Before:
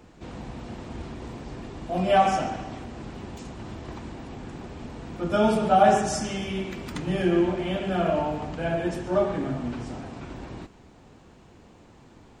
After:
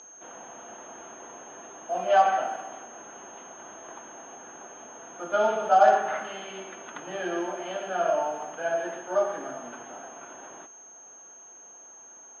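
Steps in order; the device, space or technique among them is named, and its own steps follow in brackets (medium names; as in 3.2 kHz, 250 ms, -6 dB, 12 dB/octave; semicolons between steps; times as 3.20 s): toy sound module (decimation joined by straight lines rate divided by 6×; class-D stage that switches slowly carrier 6.4 kHz; cabinet simulation 600–3900 Hz, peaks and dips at 670 Hz +4 dB, 1.5 kHz +5 dB, 2.2 kHz -6 dB, 3.2 kHz +8 dB)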